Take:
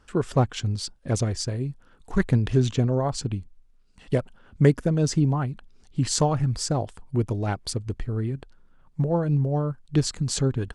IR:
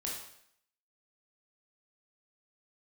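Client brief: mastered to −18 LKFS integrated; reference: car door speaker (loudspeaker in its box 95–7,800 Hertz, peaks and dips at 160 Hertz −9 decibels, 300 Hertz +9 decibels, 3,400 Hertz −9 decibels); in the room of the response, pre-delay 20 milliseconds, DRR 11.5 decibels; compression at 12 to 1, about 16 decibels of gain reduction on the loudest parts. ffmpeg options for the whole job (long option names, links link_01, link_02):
-filter_complex "[0:a]acompressor=threshold=-29dB:ratio=12,asplit=2[link_01][link_02];[1:a]atrim=start_sample=2205,adelay=20[link_03];[link_02][link_03]afir=irnorm=-1:irlink=0,volume=-12.5dB[link_04];[link_01][link_04]amix=inputs=2:normalize=0,highpass=95,equalizer=frequency=160:width_type=q:width=4:gain=-9,equalizer=frequency=300:width_type=q:width=4:gain=9,equalizer=frequency=3400:width_type=q:width=4:gain=-9,lowpass=frequency=7800:width=0.5412,lowpass=frequency=7800:width=1.3066,volume=17dB"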